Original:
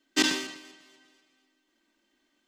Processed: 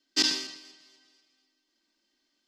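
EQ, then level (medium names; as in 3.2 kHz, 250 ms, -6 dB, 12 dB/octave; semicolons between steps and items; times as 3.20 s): peaking EQ 4.9 kHz +14.5 dB 0.69 oct; -7.0 dB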